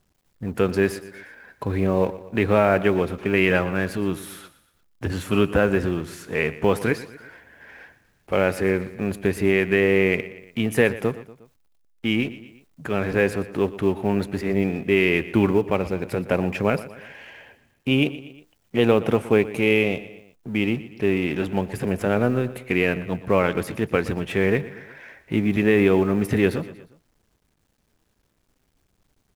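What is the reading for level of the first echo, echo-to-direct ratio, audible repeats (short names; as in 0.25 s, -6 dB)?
-16.5 dB, -15.0 dB, 3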